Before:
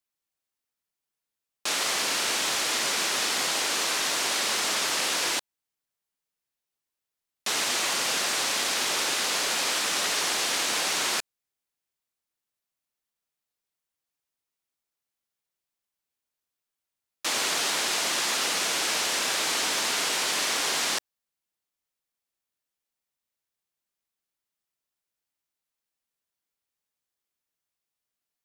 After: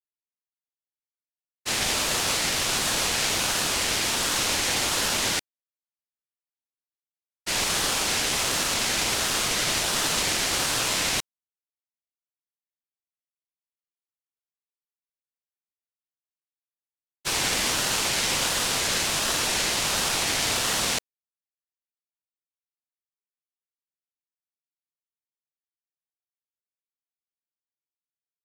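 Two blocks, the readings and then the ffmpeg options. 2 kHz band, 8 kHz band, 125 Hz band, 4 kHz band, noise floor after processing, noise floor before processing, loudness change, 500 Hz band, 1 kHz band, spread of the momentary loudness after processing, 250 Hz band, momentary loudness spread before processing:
+1.0 dB, +2.0 dB, +14.5 dB, +1.5 dB, below −85 dBFS, below −85 dBFS, +1.5 dB, +2.0 dB, +1.0 dB, 3 LU, +5.5 dB, 2 LU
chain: -af "agate=range=-33dB:threshold=-24dB:ratio=3:detection=peak,aeval=exprs='val(0)*sin(2*PI*1700*n/s+1700*0.35/1.4*sin(2*PI*1.4*n/s))':channel_layout=same,volume=6.5dB"

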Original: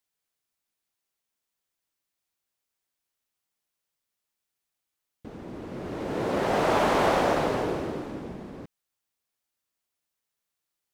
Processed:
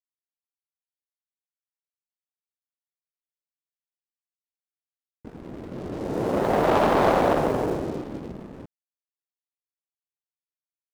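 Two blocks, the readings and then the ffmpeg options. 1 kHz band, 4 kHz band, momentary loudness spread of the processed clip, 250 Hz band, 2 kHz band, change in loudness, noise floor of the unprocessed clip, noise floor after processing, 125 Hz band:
+2.5 dB, −2.0 dB, 19 LU, +3.5 dB, −0.5 dB, +3.0 dB, −85 dBFS, below −85 dBFS, +3.5 dB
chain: -af "adynamicsmooth=sensitivity=0.5:basefreq=790,aeval=exprs='sgn(val(0))*max(abs(val(0))-0.00355,0)':channel_layout=same,highshelf=frequency=3900:gain=11.5,volume=4.5dB"

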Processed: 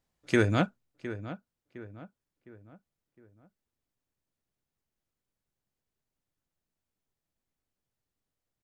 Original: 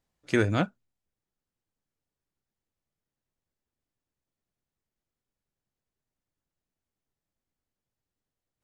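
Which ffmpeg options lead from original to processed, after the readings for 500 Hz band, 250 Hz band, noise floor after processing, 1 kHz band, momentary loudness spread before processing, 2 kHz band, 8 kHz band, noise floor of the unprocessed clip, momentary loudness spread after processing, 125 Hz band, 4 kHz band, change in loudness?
0.0 dB, +0.5 dB, below −85 dBFS, 0.0 dB, 6 LU, 0.0 dB, can't be measured, below −85 dBFS, 22 LU, +0.5 dB, 0.0 dB, −2.5 dB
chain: -filter_complex "[0:a]asplit=2[link_01][link_02];[link_02]adelay=710,lowpass=frequency=2200:poles=1,volume=-13dB,asplit=2[link_03][link_04];[link_04]adelay=710,lowpass=frequency=2200:poles=1,volume=0.43,asplit=2[link_05][link_06];[link_06]adelay=710,lowpass=frequency=2200:poles=1,volume=0.43,asplit=2[link_07][link_08];[link_08]adelay=710,lowpass=frequency=2200:poles=1,volume=0.43[link_09];[link_01][link_03][link_05][link_07][link_09]amix=inputs=5:normalize=0"

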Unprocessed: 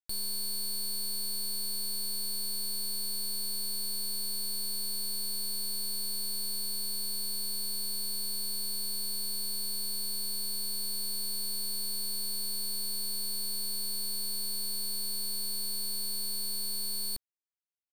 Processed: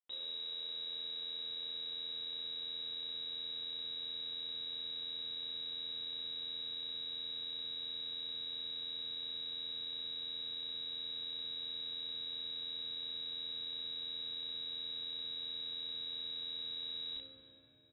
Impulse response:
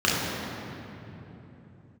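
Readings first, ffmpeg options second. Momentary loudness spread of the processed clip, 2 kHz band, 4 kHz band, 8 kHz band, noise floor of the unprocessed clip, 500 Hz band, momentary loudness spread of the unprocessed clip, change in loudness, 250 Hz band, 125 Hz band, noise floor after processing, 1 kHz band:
0 LU, −2.5 dB, −3.0 dB, below −40 dB, −33 dBFS, −5.5 dB, 0 LU, −7.5 dB, −12.0 dB, can't be measured, −44 dBFS, −8.0 dB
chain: -filter_complex "[0:a]equalizer=frequency=250:width_type=o:width=0.88:gain=-4,tremolo=f=83:d=0.889,lowpass=frequency=3300:width_type=q:width=0.5098,lowpass=frequency=3300:width_type=q:width=0.6013,lowpass=frequency=3300:width_type=q:width=0.9,lowpass=frequency=3300:width_type=q:width=2.563,afreqshift=-3900,asplit=2[link_01][link_02];[link_02]adelay=34,volume=-2.5dB[link_03];[link_01][link_03]amix=inputs=2:normalize=0,asplit=2[link_04][link_05];[1:a]atrim=start_sample=2205,asetrate=43218,aresample=44100[link_06];[link_05][link_06]afir=irnorm=-1:irlink=0,volume=-20.5dB[link_07];[link_04][link_07]amix=inputs=2:normalize=0,asubboost=boost=6:cutoff=150,volume=-2dB"

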